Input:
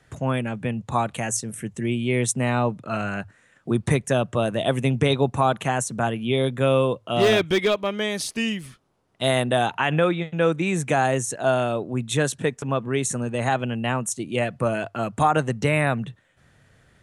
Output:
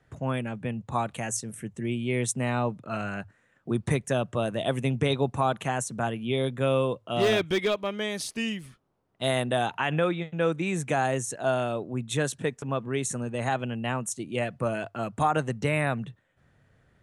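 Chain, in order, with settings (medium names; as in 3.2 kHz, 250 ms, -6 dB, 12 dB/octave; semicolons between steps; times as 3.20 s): tape noise reduction on one side only decoder only; trim -5 dB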